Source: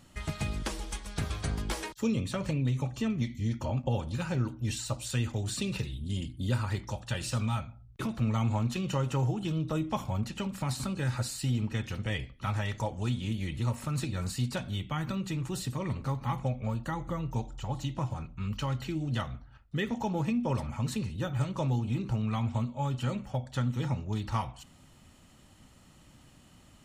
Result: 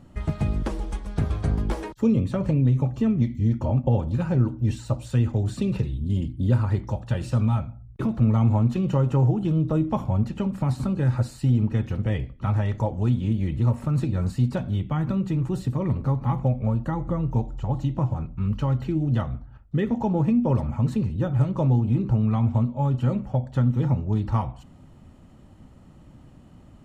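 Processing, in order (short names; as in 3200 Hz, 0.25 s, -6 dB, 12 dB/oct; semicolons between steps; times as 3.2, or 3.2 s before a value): tilt shelf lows +9.5 dB, about 1500 Hz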